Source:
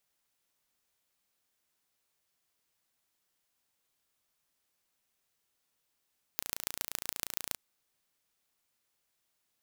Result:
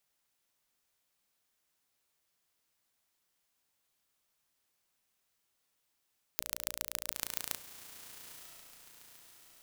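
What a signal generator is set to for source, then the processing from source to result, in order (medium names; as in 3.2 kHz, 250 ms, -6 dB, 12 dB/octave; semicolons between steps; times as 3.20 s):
pulse train 28.5 per s, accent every 4, -4.5 dBFS 1.17 s
hum notches 60/120/180/240/300/360/420/480/540/600 Hz; echo that smears into a reverb 945 ms, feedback 50%, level -11.5 dB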